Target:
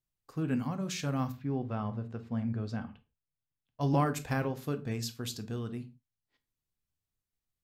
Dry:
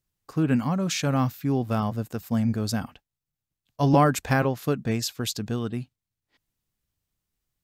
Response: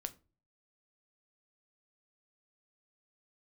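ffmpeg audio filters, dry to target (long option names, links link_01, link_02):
-filter_complex "[0:a]asettb=1/sr,asplit=3[link_01][link_02][link_03];[link_01]atrim=end=1.324[link_04];[link_02]atrim=start=1.32:end=3.81,asetpts=PTS-STARTPTS,afade=type=in:duration=0.004:curve=qsin,afade=type=out:start_time=2.486:duration=0.004:curve=qsin,lowpass=2900[link_05];[link_03]atrim=start=3.806[link_06];[link_04][link_05]acrossfade=duration=0.004:curve1=hsin:curve2=qsin[link_07];[link_07][link_06]acrossfade=duration=0.004:curve1=qsin:curve2=hsin[link_08];[1:a]atrim=start_sample=2205,atrim=end_sample=6615,asetrate=36162,aresample=44100[link_09];[link_08][link_09]afir=irnorm=-1:irlink=0,volume=-8dB"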